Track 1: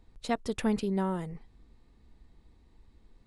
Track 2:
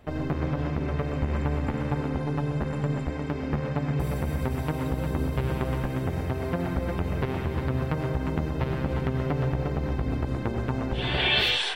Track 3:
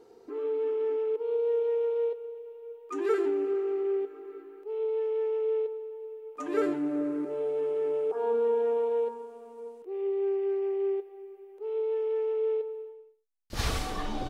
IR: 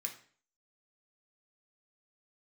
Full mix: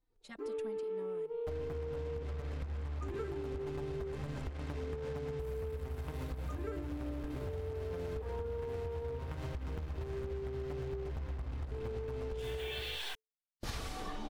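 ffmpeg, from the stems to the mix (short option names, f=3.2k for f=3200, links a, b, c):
-filter_complex "[0:a]lowshelf=f=500:g=-4.5,dynaudnorm=f=210:g=3:m=7.5dB,asplit=2[a][b];[b]adelay=3.4,afreqshift=-2.6[c];[a][c]amix=inputs=2:normalize=1,volume=-15.5dB[d];[1:a]lowshelf=f=110:t=q:w=1.5:g=9.5,acompressor=threshold=-24dB:ratio=6,acrusher=bits=5:mix=0:aa=0.5,adelay=1400,volume=-3.5dB[e];[2:a]agate=range=-33dB:threshold=-39dB:ratio=3:detection=peak,adelay=100,volume=-2dB[f];[d][e][f]amix=inputs=3:normalize=0,acompressor=threshold=-37dB:ratio=6"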